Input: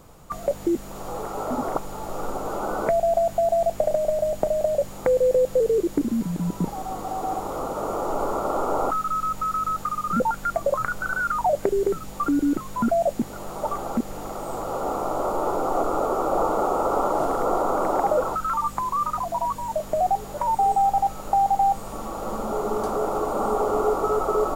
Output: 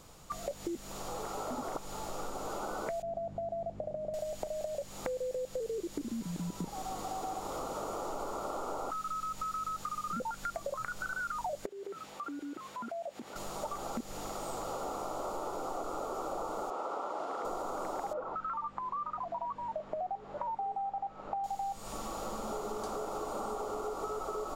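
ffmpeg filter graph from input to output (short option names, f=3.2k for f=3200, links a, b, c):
-filter_complex "[0:a]asettb=1/sr,asplit=3[a][b][c];[a]atrim=end=3.024[d];[b]atrim=start=3.02:end=4.14,asetpts=PTS-STARTPTS,afade=t=in:d=0.004:c=qsin,afade=t=out:st=1.116:d=0.004:c=qsin,acontrast=24,bandpass=f=130:t=q:w=0.59[e];[c]atrim=start=4.136[f];[d][e]acrossfade=d=0.004:c1=hsin:c2=qsin[g];[g][f]acrossfade=d=0.004:c1=qsin:c2=hsin,asettb=1/sr,asplit=3[h][i][j];[h]atrim=end=11.664[k];[i]atrim=start=11.66:end=13.36,asetpts=PTS-STARTPTS,afade=t=in:d=0.004:c=qsin,afade=t=out:st=1.696:d=0.004:c=qsin,highpass=78,bass=f=250:g=-13,treble=f=4k:g=-11,acompressor=threshold=-35dB:ratio=2.5:attack=3.2:release=140:knee=1:detection=peak[l];[j]atrim=start=13.356[m];[k][l]acrossfade=d=0.004:c1=hsin:c2=qsin[n];[n][m]acrossfade=d=0.004:c1=qsin:c2=hsin,asettb=1/sr,asplit=3[o][p][q];[o]atrim=end=16.704[r];[p]atrim=start=16.7:end=17.45,asetpts=PTS-STARTPTS,afade=t=in:d=0.004:c=qsin,afade=t=out:st=0.746:d=0.004:c=qsin,highpass=170,lowpass=2.7k,aemphasis=mode=production:type=bsi[s];[q]atrim=start=17.446[t];[r][s]acrossfade=d=0.004:c1=hsin:c2=qsin[u];[u][t]acrossfade=d=0.004:c1=qsin:c2=hsin,asettb=1/sr,asplit=3[v][w][x];[v]atrim=end=18.134[y];[w]atrim=start=18.13:end=21.44,asetpts=PTS-STARTPTS,afade=t=in:d=0.004:c=qsin,afade=t=out:st=3.306:d=0.004:c=qsin,lowpass=1.6k,lowshelf=f=110:g=-11[z];[x]atrim=start=21.436[aa];[y][z]acrossfade=d=0.004:c1=hsin:c2=qsin[ab];[ab][aa]acrossfade=d=0.004:c1=qsin:c2=hsin,equalizer=f=4.8k:t=o:w=2.4:g=9.5,acompressor=threshold=-27dB:ratio=6,volume=-7.5dB"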